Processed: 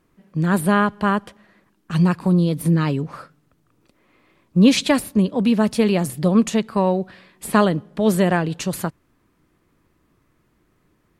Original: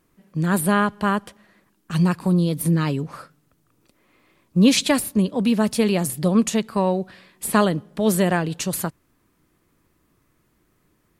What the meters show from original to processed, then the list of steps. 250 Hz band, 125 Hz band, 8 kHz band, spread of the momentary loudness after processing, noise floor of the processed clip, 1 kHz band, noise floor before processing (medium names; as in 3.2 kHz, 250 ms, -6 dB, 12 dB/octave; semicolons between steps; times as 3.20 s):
+2.0 dB, +2.0 dB, -4.0 dB, 9 LU, -64 dBFS, +1.5 dB, -66 dBFS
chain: treble shelf 5.7 kHz -9 dB; trim +2 dB